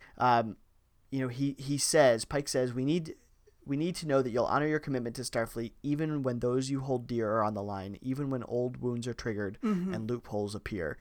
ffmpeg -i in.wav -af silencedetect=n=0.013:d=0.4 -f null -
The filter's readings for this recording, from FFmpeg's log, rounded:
silence_start: 0.52
silence_end: 1.13 | silence_duration: 0.60
silence_start: 3.12
silence_end: 3.67 | silence_duration: 0.55